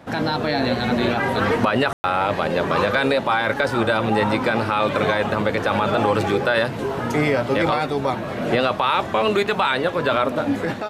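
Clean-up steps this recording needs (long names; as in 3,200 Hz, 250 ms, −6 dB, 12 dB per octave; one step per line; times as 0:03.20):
ambience match 0:01.93–0:02.04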